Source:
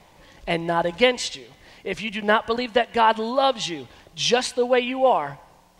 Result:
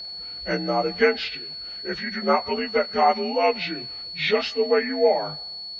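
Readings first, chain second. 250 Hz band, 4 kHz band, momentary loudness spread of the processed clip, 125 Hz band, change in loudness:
-1.0 dB, -0.5 dB, 11 LU, -2.0 dB, -1.5 dB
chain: inharmonic rescaling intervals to 86%; whine 4400 Hz -33 dBFS

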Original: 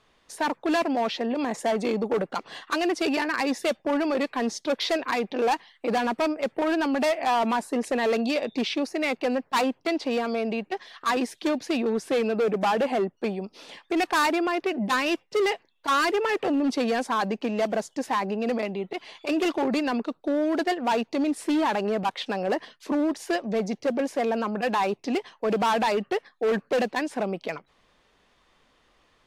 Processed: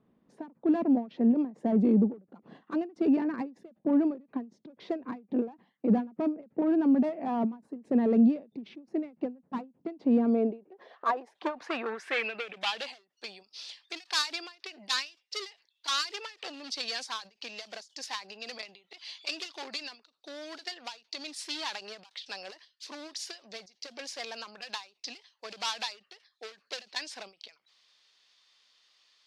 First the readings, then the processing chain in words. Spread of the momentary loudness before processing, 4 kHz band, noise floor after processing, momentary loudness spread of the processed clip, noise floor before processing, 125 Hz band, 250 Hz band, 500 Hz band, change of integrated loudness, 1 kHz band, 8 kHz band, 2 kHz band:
6 LU, -2.0 dB, -76 dBFS, 19 LU, -66 dBFS, n/a, -2.0 dB, -11.0 dB, -4.5 dB, -12.0 dB, -4.0 dB, -9.5 dB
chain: band-pass sweep 210 Hz -> 4700 Hz, 10.09–12.92; ending taper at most 200 dB/s; gain +8.5 dB

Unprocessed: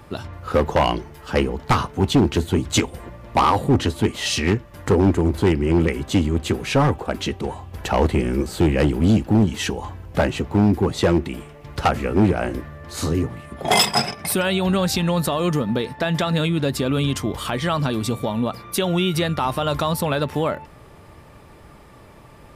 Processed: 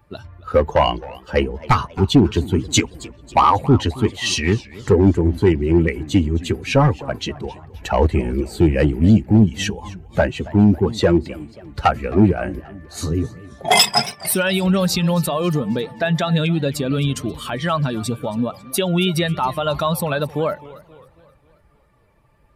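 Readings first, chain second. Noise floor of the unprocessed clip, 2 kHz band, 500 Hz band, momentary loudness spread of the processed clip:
-46 dBFS, +1.5 dB, +2.0 dB, 12 LU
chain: per-bin expansion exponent 1.5; warbling echo 0.268 s, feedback 48%, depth 193 cents, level -19.5 dB; gain +5.5 dB

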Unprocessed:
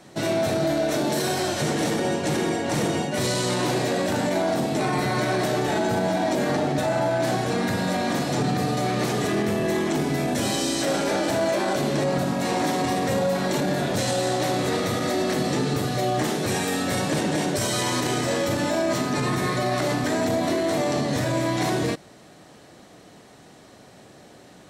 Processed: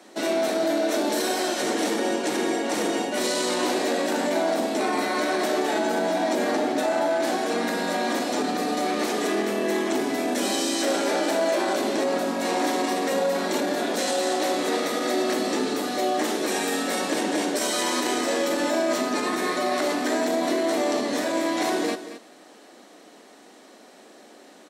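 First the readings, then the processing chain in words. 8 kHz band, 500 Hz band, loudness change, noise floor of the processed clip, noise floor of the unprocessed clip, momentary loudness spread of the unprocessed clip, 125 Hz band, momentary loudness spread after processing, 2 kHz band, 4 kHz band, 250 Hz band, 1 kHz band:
0.0 dB, 0.0 dB, -0.5 dB, -50 dBFS, -49 dBFS, 1 LU, -17.5 dB, 2 LU, +0.5 dB, +0.5 dB, -1.5 dB, 0.0 dB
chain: steep high-pass 230 Hz 36 dB/oct; on a send: echo 0.226 s -12.5 dB

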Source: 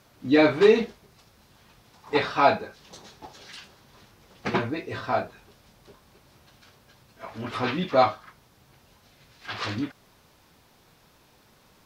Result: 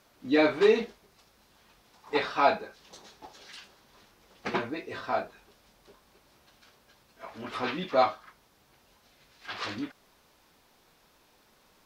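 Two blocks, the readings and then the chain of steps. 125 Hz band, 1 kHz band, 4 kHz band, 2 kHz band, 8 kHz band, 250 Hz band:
-11.0 dB, -3.5 dB, -3.5 dB, -3.5 dB, n/a, -5.5 dB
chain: bell 110 Hz -10 dB 1.4 oct; gain -3.5 dB

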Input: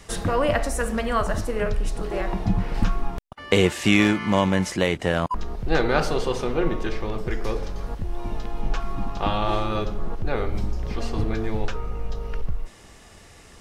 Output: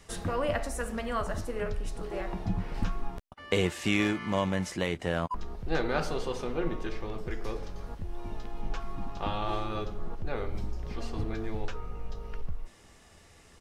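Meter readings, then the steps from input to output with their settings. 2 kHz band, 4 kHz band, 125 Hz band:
-8.5 dB, -8.5 dB, -8.0 dB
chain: doubler 12 ms -13 dB; gain -8.5 dB

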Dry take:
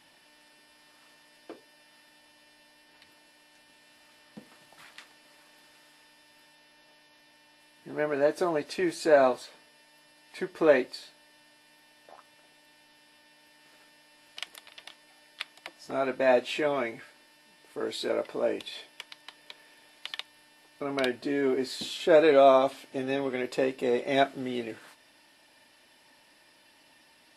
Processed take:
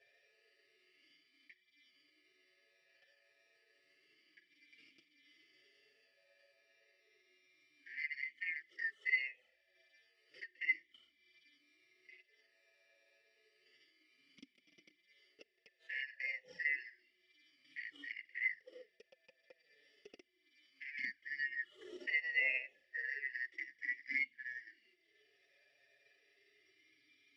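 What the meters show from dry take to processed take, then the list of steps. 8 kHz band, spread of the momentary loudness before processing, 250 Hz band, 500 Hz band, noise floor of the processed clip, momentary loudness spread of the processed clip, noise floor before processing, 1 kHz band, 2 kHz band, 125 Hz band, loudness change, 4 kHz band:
under -25 dB, 20 LU, -32.5 dB, -37.0 dB, -78 dBFS, 14 LU, -61 dBFS, under -40 dB, -2.0 dB, under -35 dB, -12.0 dB, -17.0 dB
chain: four-band scrambler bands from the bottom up 3142; envelope flanger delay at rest 7.5 ms, full sweep at -21.5 dBFS; transient shaper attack +8 dB, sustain -9 dB; in parallel at +2 dB: compressor, threshold -42 dBFS, peak gain reduction 23 dB; on the sum: harmonic-percussive split percussive -16 dB; vowel sweep e-i 0.31 Hz; gain +2 dB

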